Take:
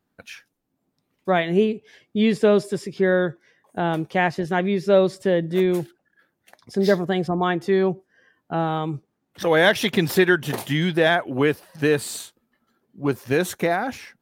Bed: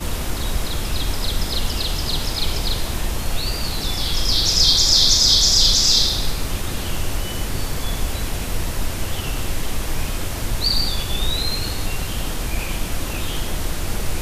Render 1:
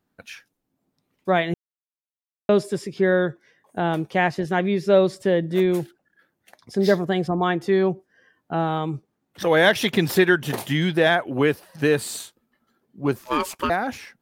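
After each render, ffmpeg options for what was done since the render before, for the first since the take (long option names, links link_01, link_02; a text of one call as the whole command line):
ffmpeg -i in.wav -filter_complex "[0:a]asettb=1/sr,asplit=3[link_01][link_02][link_03];[link_01]atrim=end=13.184[link_04];[link_02]atrim=start=13.18:end=13.7,asetpts=PTS-STARTPTS,afade=type=in:duration=0.004:curve=qsin,afade=type=out:start_time=0.516:duration=0.004:curve=qsin,aeval=exprs='val(0)*sin(2*PI*750*n/s)':channel_layout=same[link_05];[link_03]atrim=start=13.696[link_06];[link_04][link_05]acrossfade=duration=0.004:curve1=hsin:curve2=qsin[link_07];[link_07][link_06]acrossfade=duration=0.004:curve1=qsin:curve2=hsin,asplit=3[link_08][link_09][link_10];[link_08]atrim=end=1.54,asetpts=PTS-STARTPTS,afade=type=out:start_time=1.536:duration=0.004:curve=hsin[link_11];[link_09]atrim=start=1.54:end=2.49,asetpts=PTS-STARTPTS,volume=0[link_12];[link_10]atrim=start=2.49,asetpts=PTS-STARTPTS,afade=type=in:duration=0.004:curve=hsin[link_13];[link_11][link_12][link_13]concat=n=3:v=0:a=1" out.wav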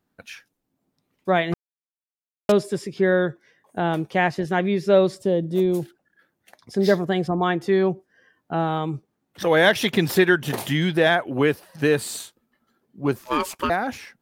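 ffmpeg -i in.wav -filter_complex "[0:a]asettb=1/sr,asplit=3[link_01][link_02][link_03];[link_01]atrim=end=1.524[link_04];[link_02]atrim=start=1.52:end=2.52,asetpts=PTS-STARTPTS,afade=type=in:duration=0.004:curve=qsin,afade=type=out:start_time=0.996:duration=0.004:curve=qsin,acrusher=bits=3:mix=0:aa=0.5[link_05];[link_03]atrim=start=2.516[link_06];[link_04][link_05]acrossfade=duration=0.004:curve1=hsin:curve2=qsin[link_07];[link_07][link_06]acrossfade=duration=0.004:curve1=qsin:curve2=hsin,asettb=1/sr,asplit=3[link_08][link_09][link_10];[link_08]atrim=end=5.204[link_11];[link_09]atrim=start=5.2:end=5.82,asetpts=PTS-STARTPTS,afade=type=in:duration=0.004:curve=qsin,afade=type=out:start_time=0.616:duration=0.004:curve=qsin,equalizer=frequency=1800:width_type=o:width=1.3:gain=-14[link_12];[link_10]atrim=start=5.816[link_13];[link_11][link_12]acrossfade=duration=0.004:curve1=hsin:curve2=qsin[link_14];[link_14][link_13]acrossfade=duration=0.004:curve1=qsin:curve2=hsin,asettb=1/sr,asplit=3[link_15][link_16][link_17];[link_15]atrim=end=10.484[link_18];[link_16]atrim=start=10.48:end=11.1,asetpts=PTS-STARTPTS,afade=type=in:duration=0.004:curve=qsin,afade=type=out:start_time=0.616:duration=0.004:curve=qsin,acompressor=mode=upward:threshold=-23dB:ratio=2.5:attack=3.2:release=140:knee=2.83:detection=peak[link_19];[link_17]atrim=start=11.096[link_20];[link_18][link_19]acrossfade=duration=0.004:curve1=hsin:curve2=qsin[link_21];[link_21][link_20]acrossfade=duration=0.004:curve1=qsin:curve2=hsin" out.wav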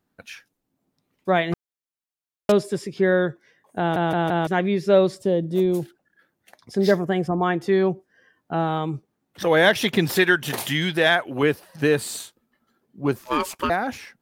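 ffmpeg -i in.wav -filter_complex "[0:a]asettb=1/sr,asplit=3[link_01][link_02][link_03];[link_01]atrim=end=6.914[link_04];[link_02]atrim=start=6.91:end=7.54,asetpts=PTS-STARTPTS,afade=type=in:duration=0.004:curve=qsin,afade=type=out:start_time=0.626:duration=0.004:curve=qsin,equalizer=frequency=4000:width_type=o:width=0.46:gain=-11.5[link_05];[link_03]atrim=start=7.536[link_06];[link_04][link_05]acrossfade=duration=0.004:curve1=hsin:curve2=qsin[link_07];[link_07][link_06]acrossfade=duration=0.004:curve1=qsin:curve2=hsin,asettb=1/sr,asplit=3[link_08][link_09][link_10];[link_08]atrim=end=10.154[link_11];[link_09]atrim=start=10.15:end=11.43,asetpts=PTS-STARTPTS,afade=type=in:duration=0.004:curve=qsin,afade=type=out:start_time=1.276:duration=0.004:curve=qsin,tiltshelf=frequency=970:gain=-4[link_12];[link_10]atrim=start=11.426[link_13];[link_11][link_12]acrossfade=duration=0.004:curve1=hsin:curve2=qsin[link_14];[link_14][link_13]acrossfade=duration=0.004:curve1=qsin:curve2=hsin,asplit=5[link_15][link_16][link_17][link_18][link_19];[link_15]atrim=end=3.962[link_20];[link_16]atrim=start=3.788:end=3.962[link_21];[link_17]atrim=start=3.788:end=3.962[link_22];[link_18]atrim=start=3.788:end=3.962[link_23];[link_19]atrim=start=4.468[link_24];[link_20][link_21]acrossfade=duration=0.004:curve1=hsin:curve2=hsin[link_25];[link_25][link_22]acrossfade=duration=0.004:curve1=hsin:curve2=hsin[link_26];[link_26][link_23]acrossfade=duration=0.004:curve1=hsin:curve2=hsin[link_27];[link_27][link_24]acrossfade=duration=0.004:curve1=hsin:curve2=hsin" out.wav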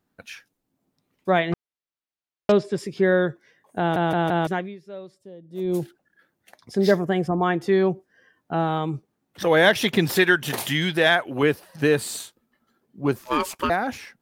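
ffmpeg -i in.wav -filter_complex "[0:a]asettb=1/sr,asplit=3[link_01][link_02][link_03];[link_01]atrim=end=1.394[link_04];[link_02]atrim=start=1.39:end=2.78,asetpts=PTS-STARTPTS,afade=type=in:duration=0.004:curve=qsin,afade=type=out:start_time=1.386:duration=0.004:curve=qsin,lowpass=4700[link_05];[link_03]atrim=start=2.776[link_06];[link_04][link_05]acrossfade=duration=0.004:curve1=hsin:curve2=qsin[link_07];[link_07][link_06]acrossfade=duration=0.004:curve1=qsin:curve2=hsin,asplit=3[link_08][link_09][link_10];[link_08]atrim=end=4.82,asetpts=PTS-STARTPTS,afade=type=out:start_time=4.48:duration=0.34:curve=qua:silence=0.0841395[link_11];[link_09]atrim=start=4.82:end=5.42,asetpts=PTS-STARTPTS,volume=-21.5dB[link_12];[link_10]atrim=start=5.42,asetpts=PTS-STARTPTS,afade=type=in:duration=0.34:curve=qua:silence=0.0841395[link_13];[link_11][link_12][link_13]concat=n=3:v=0:a=1" out.wav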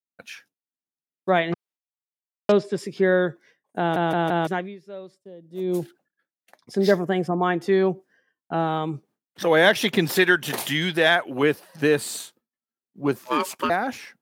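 ffmpeg -i in.wav -af "agate=range=-33dB:threshold=-48dB:ratio=3:detection=peak,highpass=150" out.wav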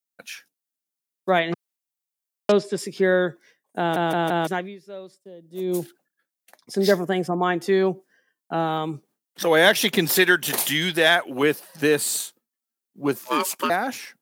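ffmpeg -i in.wav -af "highpass=140,highshelf=frequency=5300:gain=10.5" out.wav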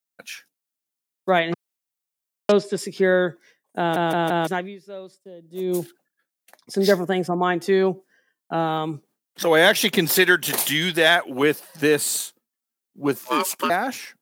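ffmpeg -i in.wav -af "volume=1dB,alimiter=limit=-3dB:level=0:latency=1" out.wav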